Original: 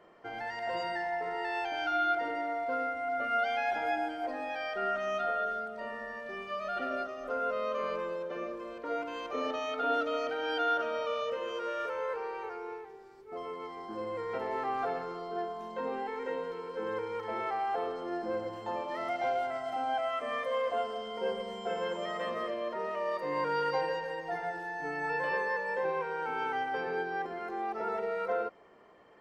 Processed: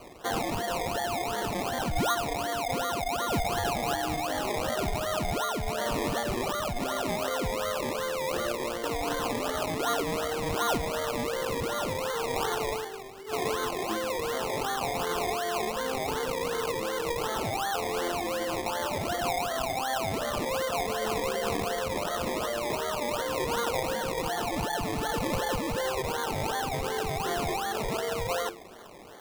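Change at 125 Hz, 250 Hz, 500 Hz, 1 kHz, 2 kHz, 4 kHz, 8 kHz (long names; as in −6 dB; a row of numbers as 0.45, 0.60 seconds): +17.0 dB, +8.0 dB, +3.5 dB, +2.5 dB, +2.0 dB, +10.5 dB, can't be measured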